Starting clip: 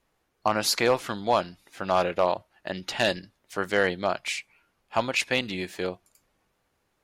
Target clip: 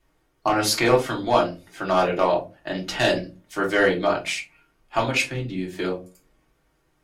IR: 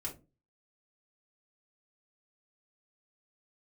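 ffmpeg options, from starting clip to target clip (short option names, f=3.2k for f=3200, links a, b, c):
-filter_complex "[0:a]asettb=1/sr,asplit=3[a][b][c];[a]atrim=end=5.254[d];[b]atrim=start=5.25:end=5.78,asetpts=PTS-STARTPTS,afade=t=in:d=0.004:c=qsin,afade=t=out:st=0.526:d=0.004:c=qsin,acrossover=split=330[e][f];[f]acompressor=threshold=-42dB:ratio=4[g];[e][g]amix=inputs=2:normalize=0[h];[c]atrim=start=5.776[i];[d][h]acrossfade=d=0.004:c1=hsin:c2=qsin[j];[j][i]acrossfade=d=0.004:c1=qsin:c2=hsin[k];[1:a]atrim=start_sample=2205[l];[k][l]afir=irnorm=-1:irlink=0,volume=4.5dB"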